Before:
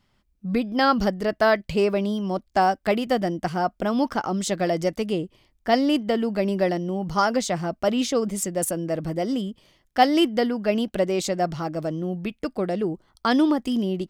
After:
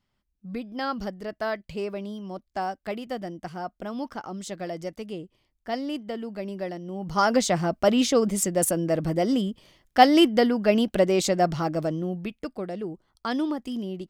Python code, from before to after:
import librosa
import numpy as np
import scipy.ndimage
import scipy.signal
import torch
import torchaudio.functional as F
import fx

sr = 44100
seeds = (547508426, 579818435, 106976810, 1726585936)

y = fx.gain(x, sr, db=fx.line((6.81, -10.0), (7.34, 2.0), (11.73, 2.0), (12.67, -7.5)))